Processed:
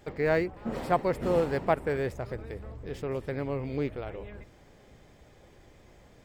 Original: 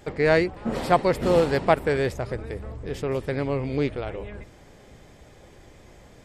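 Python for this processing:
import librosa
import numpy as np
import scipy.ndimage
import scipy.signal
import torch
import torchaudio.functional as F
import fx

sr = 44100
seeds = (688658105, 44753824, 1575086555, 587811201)

y = fx.dynamic_eq(x, sr, hz=4000.0, q=1.1, threshold_db=-44.0, ratio=4.0, max_db=-6)
y = np.interp(np.arange(len(y)), np.arange(len(y))[::2], y[::2])
y = y * 10.0 ** (-6.0 / 20.0)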